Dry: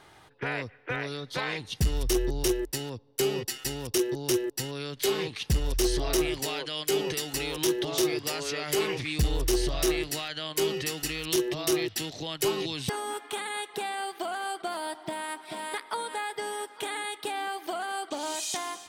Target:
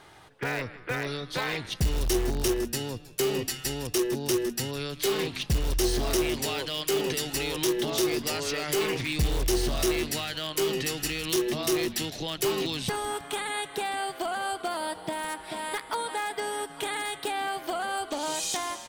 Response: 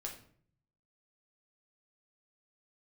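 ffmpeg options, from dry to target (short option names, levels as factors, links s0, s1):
-filter_complex "[0:a]asplit=5[s0][s1][s2][s3][s4];[s1]adelay=159,afreqshift=-130,volume=0.15[s5];[s2]adelay=318,afreqshift=-260,volume=0.0661[s6];[s3]adelay=477,afreqshift=-390,volume=0.0288[s7];[s4]adelay=636,afreqshift=-520,volume=0.0127[s8];[s0][s5][s6][s7][s8]amix=inputs=5:normalize=0,asplit=2[s9][s10];[s10]aeval=exprs='(mod(15*val(0)+1,2)-1)/15':c=same,volume=0.282[s11];[s9][s11]amix=inputs=2:normalize=0"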